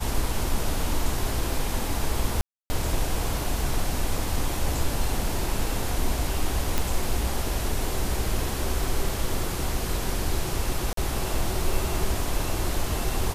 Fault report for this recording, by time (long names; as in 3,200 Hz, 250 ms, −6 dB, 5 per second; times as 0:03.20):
0:02.41–0:02.70: drop-out 290 ms
0:06.78: click
0:10.93–0:10.97: drop-out 43 ms